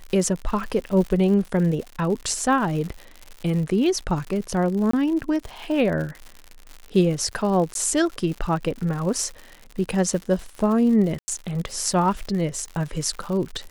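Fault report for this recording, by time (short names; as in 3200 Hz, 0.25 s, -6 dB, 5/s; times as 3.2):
crackle 120/s -30 dBFS
4.91–4.93 gap 24 ms
7.74–7.75 gap 12 ms
11.19–11.28 gap 90 ms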